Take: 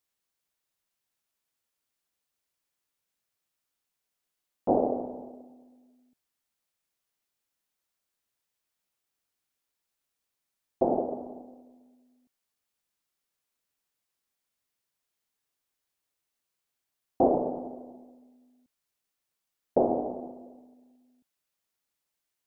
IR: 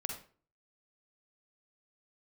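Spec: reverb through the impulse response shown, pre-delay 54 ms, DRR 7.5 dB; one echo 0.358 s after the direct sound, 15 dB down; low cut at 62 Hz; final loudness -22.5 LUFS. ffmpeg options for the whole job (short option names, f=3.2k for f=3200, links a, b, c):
-filter_complex "[0:a]highpass=62,aecho=1:1:358:0.178,asplit=2[a][b];[1:a]atrim=start_sample=2205,adelay=54[c];[b][c]afir=irnorm=-1:irlink=0,volume=-8dB[d];[a][d]amix=inputs=2:normalize=0,volume=6.5dB"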